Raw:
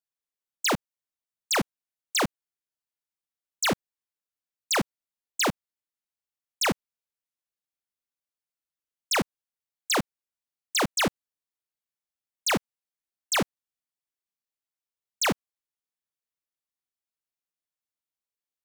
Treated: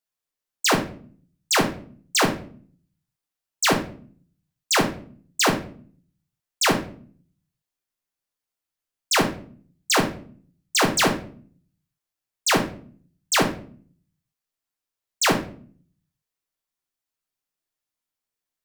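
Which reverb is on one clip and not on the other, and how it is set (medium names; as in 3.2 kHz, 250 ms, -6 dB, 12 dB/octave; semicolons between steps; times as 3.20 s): simulated room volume 47 m³, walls mixed, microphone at 0.49 m; trim +3.5 dB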